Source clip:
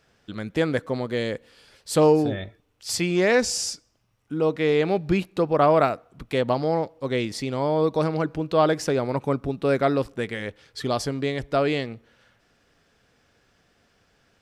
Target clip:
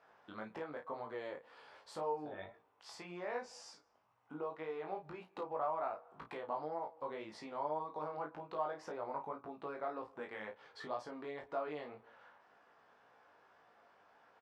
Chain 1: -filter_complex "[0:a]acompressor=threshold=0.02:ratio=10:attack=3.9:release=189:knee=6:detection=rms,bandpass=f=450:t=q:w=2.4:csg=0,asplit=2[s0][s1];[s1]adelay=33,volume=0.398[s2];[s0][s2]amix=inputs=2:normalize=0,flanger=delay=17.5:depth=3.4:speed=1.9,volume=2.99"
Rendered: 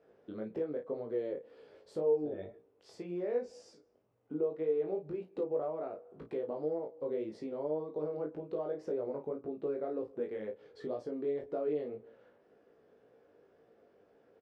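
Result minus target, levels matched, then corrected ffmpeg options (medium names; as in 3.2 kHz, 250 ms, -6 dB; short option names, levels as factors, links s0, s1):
1 kHz band -14.5 dB
-filter_complex "[0:a]acompressor=threshold=0.02:ratio=10:attack=3.9:release=189:knee=6:detection=rms,bandpass=f=930:t=q:w=2.4:csg=0,asplit=2[s0][s1];[s1]adelay=33,volume=0.398[s2];[s0][s2]amix=inputs=2:normalize=0,flanger=delay=17.5:depth=3.4:speed=1.9,volume=2.99"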